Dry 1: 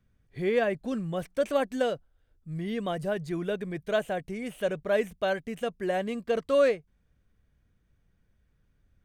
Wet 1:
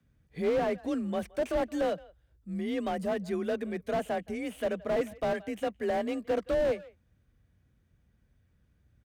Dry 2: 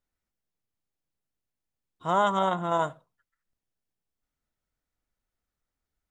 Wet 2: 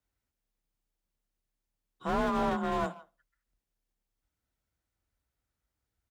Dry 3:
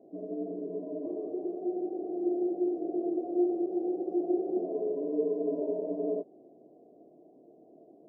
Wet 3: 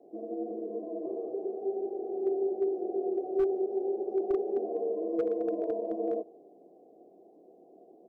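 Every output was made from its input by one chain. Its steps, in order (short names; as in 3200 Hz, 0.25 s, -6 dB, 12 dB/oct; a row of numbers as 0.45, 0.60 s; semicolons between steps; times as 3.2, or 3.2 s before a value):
speakerphone echo 0.17 s, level -24 dB; frequency shift +34 Hz; slew limiter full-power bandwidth 33 Hz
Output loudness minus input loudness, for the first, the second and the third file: -2.0, -5.0, 0.0 LU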